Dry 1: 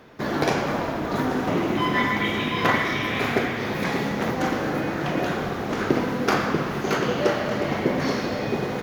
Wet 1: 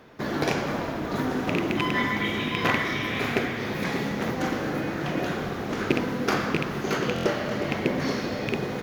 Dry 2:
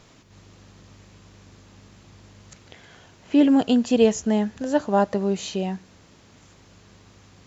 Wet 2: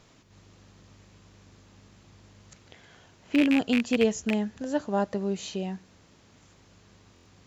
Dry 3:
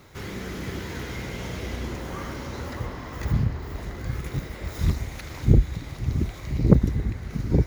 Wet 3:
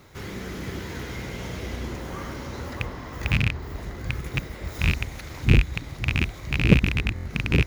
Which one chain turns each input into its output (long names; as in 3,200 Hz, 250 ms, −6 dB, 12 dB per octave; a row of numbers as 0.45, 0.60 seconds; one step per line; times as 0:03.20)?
loose part that buzzes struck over −22 dBFS, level −10 dBFS
dynamic equaliser 840 Hz, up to −3 dB, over −32 dBFS, Q 0.94
buffer that repeats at 0:07.14, samples 1,024, times 4
loudness normalisation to −27 LKFS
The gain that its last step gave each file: −2.0, −5.0, −0.5 decibels